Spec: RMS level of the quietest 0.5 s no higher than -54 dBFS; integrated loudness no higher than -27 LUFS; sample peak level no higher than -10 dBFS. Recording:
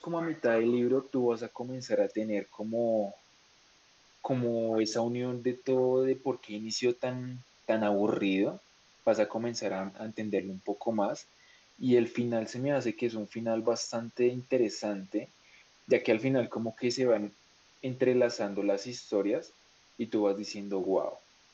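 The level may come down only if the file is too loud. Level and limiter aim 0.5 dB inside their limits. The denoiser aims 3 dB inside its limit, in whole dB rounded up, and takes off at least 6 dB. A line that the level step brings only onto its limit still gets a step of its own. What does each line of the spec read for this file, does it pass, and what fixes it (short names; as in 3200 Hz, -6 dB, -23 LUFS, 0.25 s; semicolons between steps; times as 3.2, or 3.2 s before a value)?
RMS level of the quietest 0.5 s -63 dBFS: OK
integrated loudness -31.0 LUFS: OK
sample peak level -12.5 dBFS: OK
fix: none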